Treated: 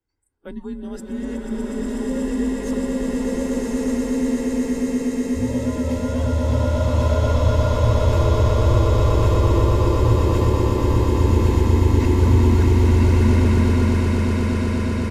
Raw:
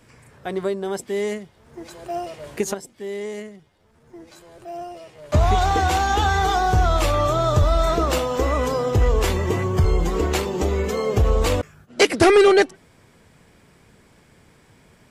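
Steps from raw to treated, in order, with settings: comb 1.8 ms, depth 38%; reverse; compressor 6:1, threshold -25 dBFS, peak gain reduction 14.5 dB; reverse; swelling echo 0.122 s, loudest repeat 8, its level -6.5 dB; frequency shift -160 Hz; spectral noise reduction 27 dB; tilt shelf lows +4.5 dB, about 720 Hz; bloom reverb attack 1.22 s, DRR -6.5 dB; gain -5.5 dB

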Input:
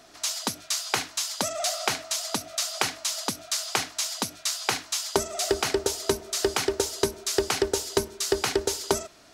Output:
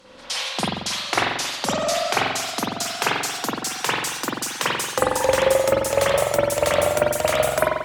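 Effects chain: speed glide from 77% -> 161%; spring tank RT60 1 s, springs 45 ms, chirp 65 ms, DRR -7.5 dB

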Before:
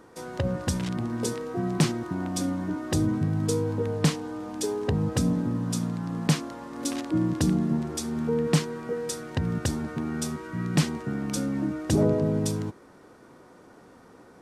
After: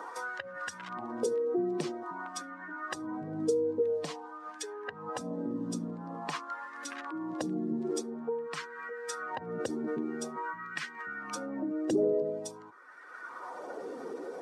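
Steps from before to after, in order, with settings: spectral contrast raised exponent 1.6; LFO high-pass sine 0.48 Hz 380–1700 Hz; three-band squash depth 70%

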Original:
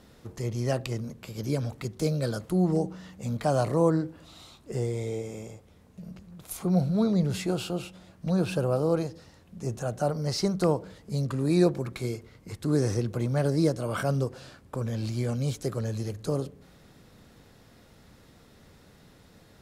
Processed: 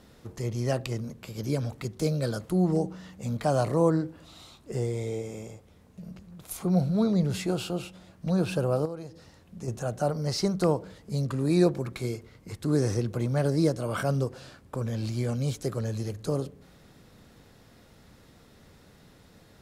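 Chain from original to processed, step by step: 8.85–9.68 compressor 8:1, threshold -33 dBFS, peak gain reduction 13.5 dB

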